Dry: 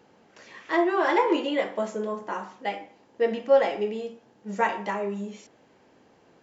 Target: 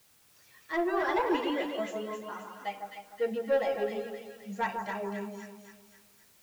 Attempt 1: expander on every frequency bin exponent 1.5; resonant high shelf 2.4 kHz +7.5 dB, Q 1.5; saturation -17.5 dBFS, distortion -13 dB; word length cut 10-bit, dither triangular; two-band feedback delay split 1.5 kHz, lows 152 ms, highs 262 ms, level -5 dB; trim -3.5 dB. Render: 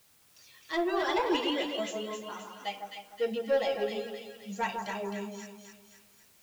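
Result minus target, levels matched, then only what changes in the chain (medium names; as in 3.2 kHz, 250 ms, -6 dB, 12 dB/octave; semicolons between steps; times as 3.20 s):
4 kHz band +7.5 dB
remove: resonant high shelf 2.4 kHz +7.5 dB, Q 1.5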